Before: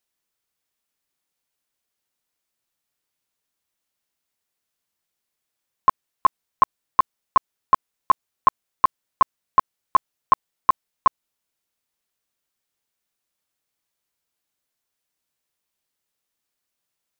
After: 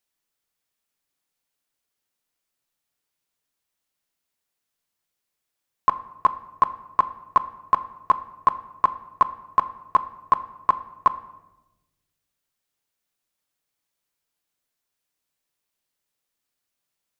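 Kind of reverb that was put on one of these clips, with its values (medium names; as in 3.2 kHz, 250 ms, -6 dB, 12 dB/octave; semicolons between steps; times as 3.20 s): simulated room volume 430 m³, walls mixed, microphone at 0.31 m; trim -1 dB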